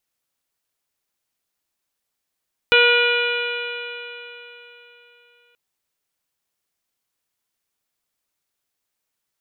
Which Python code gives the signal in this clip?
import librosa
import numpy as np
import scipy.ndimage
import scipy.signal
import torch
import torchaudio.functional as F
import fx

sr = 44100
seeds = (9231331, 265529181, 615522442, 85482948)

y = fx.additive_stiff(sr, length_s=2.83, hz=478.0, level_db=-16.0, upper_db=(-10.5, 0.5, -12, 1.5, -2, -8.5, -12.5), decay_s=3.59, stiffness=0.0013)